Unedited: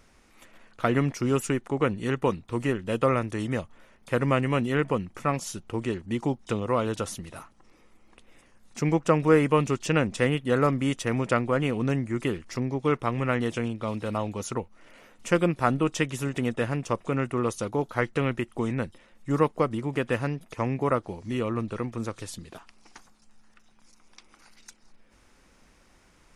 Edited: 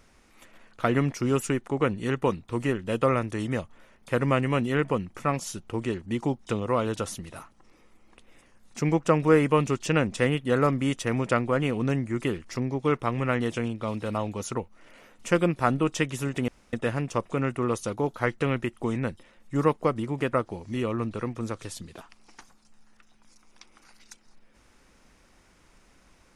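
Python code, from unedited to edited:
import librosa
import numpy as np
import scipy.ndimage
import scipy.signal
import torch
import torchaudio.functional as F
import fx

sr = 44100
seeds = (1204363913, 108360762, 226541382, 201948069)

y = fx.edit(x, sr, fx.insert_room_tone(at_s=16.48, length_s=0.25),
    fx.cut(start_s=20.08, length_s=0.82), tone=tone)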